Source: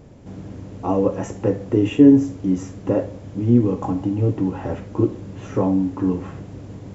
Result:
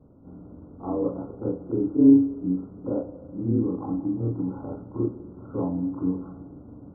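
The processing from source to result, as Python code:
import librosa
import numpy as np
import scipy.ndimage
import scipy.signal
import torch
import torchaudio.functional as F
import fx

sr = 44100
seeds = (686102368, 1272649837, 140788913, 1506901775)

y = fx.frame_reverse(x, sr, frame_ms=87.0)
y = fx.brickwall_lowpass(y, sr, high_hz=1500.0)
y = fx.peak_eq(y, sr, hz=270.0, db=6.0, octaves=0.91)
y = fx.rev_spring(y, sr, rt60_s=2.4, pass_ms=(34, 54), chirp_ms=35, drr_db=15.0)
y = y * librosa.db_to_amplitude(-7.5)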